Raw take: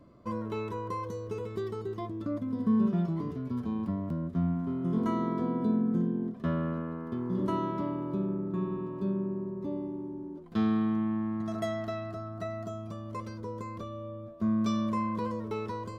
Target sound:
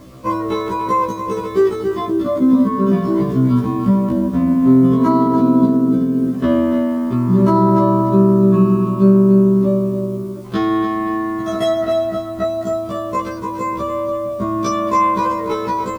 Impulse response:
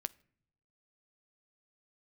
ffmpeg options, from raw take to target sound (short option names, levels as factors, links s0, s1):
-filter_complex "[0:a]asettb=1/sr,asplit=3[s0][s1][s2];[s0]atrim=end=5.364[s3];[s1]atrim=start=5.36:end=6.36,asetpts=PTS-STARTPTS,afade=t=in:d=0.004:c=qsin,afade=t=out:st=0.996:d=0.004:c=qsin,bandreject=f=1000:w=5.8[s4];[s2]atrim=start=6.356[s5];[s3][s4]acrossfade=d=0.004:c1=hsin:c2=qsin[s6];[s6][s5]acrossfade=d=0.004:c1=qsin:c2=hsin,asettb=1/sr,asplit=3[s7][s8][s9];[s7]atrim=end=11.734[s10];[s8]atrim=start=11.73:end=12.45,asetpts=PTS-STARTPTS,afade=t=in:d=0.004:c=qsin,afade=t=out:st=0.716:d=0.004:c=qsin,lowpass=f=3200:p=1[s11];[s9]atrim=start=12.446[s12];[s10][s11]acrossfade=d=0.004:c1=hsin:c2=qsin[s13];[s13][s12]acrossfade=d=0.004:c1=qsin:c2=hsin,acrusher=bits=10:mix=0:aa=0.000001,aecho=1:1:288|524:0.316|0.119,asplit=2[s14][s15];[1:a]atrim=start_sample=2205[s16];[s15][s16]afir=irnorm=-1:irlink=0,volume=3.16[s17];[s14][s17]amix=inputs=2:normalize=0,alimiter=level_in=2.99:limit=0.891:release=50:level=0:latency=1,afftfilt=real='re*1.73*eq(mod(b,3),0)':imag='im*1.73*eq(mod(b,3),0)':win_size=2048:overlap=0.75,volume=0.841"